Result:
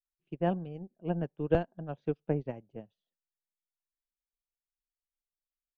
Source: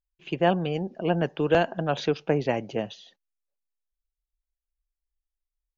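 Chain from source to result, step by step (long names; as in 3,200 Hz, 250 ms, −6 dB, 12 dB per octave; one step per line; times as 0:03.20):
spectral tilt −3.5 dB per octave
expander for the loud parts 2.5 to 1, over −31 dBFS
level −7.5 dB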